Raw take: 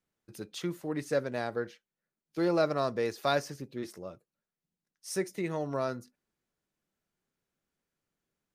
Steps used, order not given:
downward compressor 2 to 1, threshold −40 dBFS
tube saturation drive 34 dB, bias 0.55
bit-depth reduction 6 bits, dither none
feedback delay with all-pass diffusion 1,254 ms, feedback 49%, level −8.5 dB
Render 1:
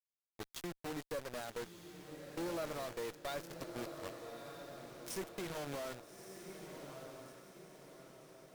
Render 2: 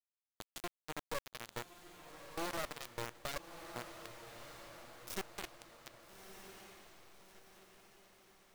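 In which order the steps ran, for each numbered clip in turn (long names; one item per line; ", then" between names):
bit-depth reduction, then downward compressor, then feedback delay with all-pass diffusion, then tube saturation
downward compressor, then tube saturation, then bit-depth reduction, then feedback delay with all-pass diffusion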